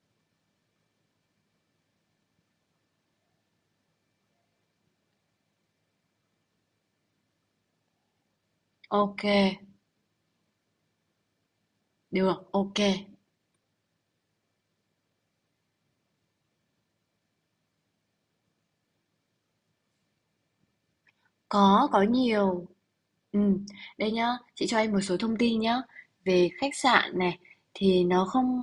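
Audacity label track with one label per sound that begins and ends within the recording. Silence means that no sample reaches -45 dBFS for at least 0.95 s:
8.840000	9.640000	sound
12.120000	13.090000	sound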